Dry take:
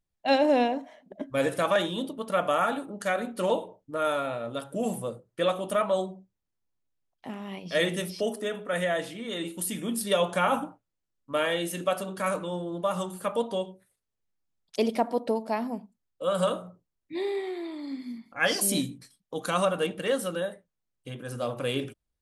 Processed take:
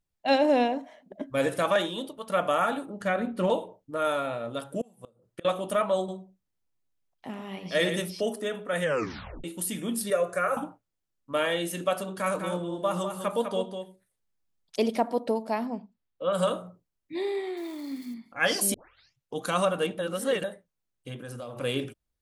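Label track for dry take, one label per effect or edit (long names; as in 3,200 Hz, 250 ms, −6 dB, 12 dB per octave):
1.770000	2.290000	parametric band 69 Hz → 340 Hz −12.5 dB 1.2 octaves
3.010000	3.500000	bass and treble bass +8 dB, treble −10 dB
4.810000	5.450000	gate with flip shuts at −23 dBFS, range −28 dB
5.970000	8.000000	single-tap delay 111 ms −9 dB
8.820000	8.820000	tape stop 0.62 s
10.100000	10.570000	phaser with its sweep stopped centre 880 Hz, stages 6
12.190000	14.980000	single-tap delay 201 ms −7 dB
15.650000	16.320000	low-pass filter 7,300 Hz → 3,300 Hz 24 dB per octave
17.570000	18.140000	spike at every zero crossing of −40 dBFS
18.740000	18.740000	tape start 0.64 s
19.990000	20.440000	reverse
21.190000	21.610000	downward compressor, threshold −35 dBFS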